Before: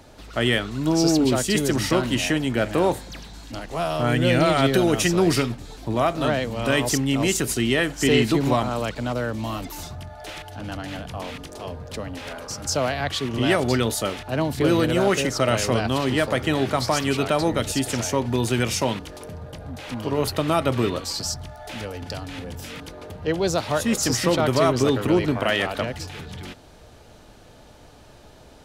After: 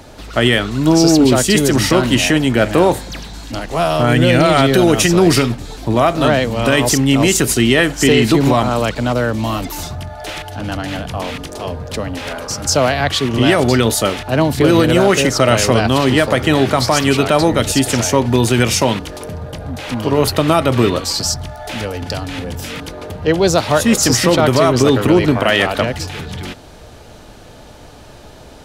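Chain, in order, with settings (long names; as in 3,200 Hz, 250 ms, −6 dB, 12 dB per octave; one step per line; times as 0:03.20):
boost into a limiter +10.5 dB
level −1 dB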